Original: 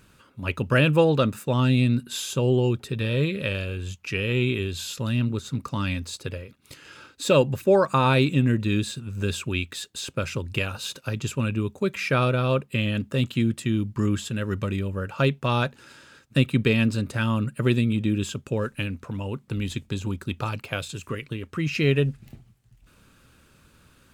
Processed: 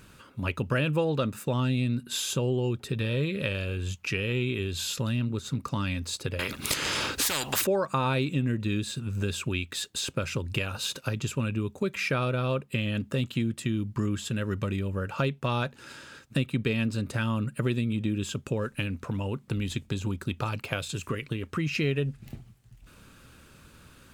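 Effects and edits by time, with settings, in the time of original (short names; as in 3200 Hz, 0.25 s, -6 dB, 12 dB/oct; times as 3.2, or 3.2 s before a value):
6.39–7.67 spectral compressor 10:1
whole clip: compressor 2.5:1, threshold -32 dBFS; gain +3.5 dB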